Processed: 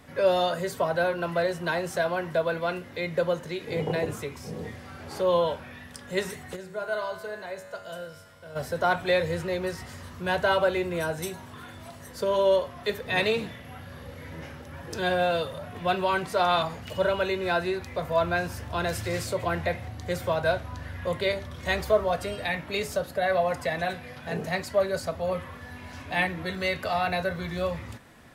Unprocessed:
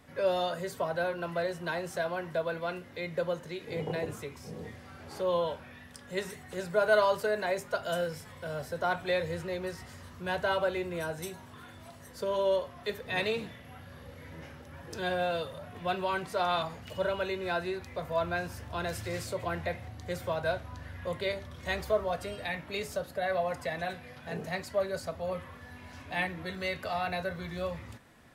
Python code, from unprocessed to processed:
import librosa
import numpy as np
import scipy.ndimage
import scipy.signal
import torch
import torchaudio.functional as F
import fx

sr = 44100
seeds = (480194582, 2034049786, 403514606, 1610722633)

y = fx.comb_fb(x, sr, f0_hz=94.0, decay_s=1.9, harmonics='all', damping=0.0, mix_pct=80, at=(6.55, 8.55), fade=0.02)
y = y * 10.0 ** (6.0 / 20.0)